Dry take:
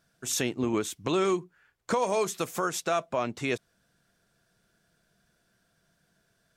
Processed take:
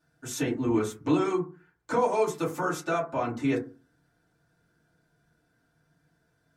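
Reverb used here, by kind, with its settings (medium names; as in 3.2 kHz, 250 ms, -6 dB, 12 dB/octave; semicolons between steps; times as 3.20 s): FDN reverb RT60 0.33 s, low-frequency decay 1.4×, high-frequency decay 0.3×, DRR -8.5 dB; trim -9.5 dB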